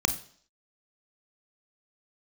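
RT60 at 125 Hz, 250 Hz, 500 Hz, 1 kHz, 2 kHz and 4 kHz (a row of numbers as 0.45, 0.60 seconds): 0.45, 0.55, 0.55, 0.55, 0.50, 0.65 seconds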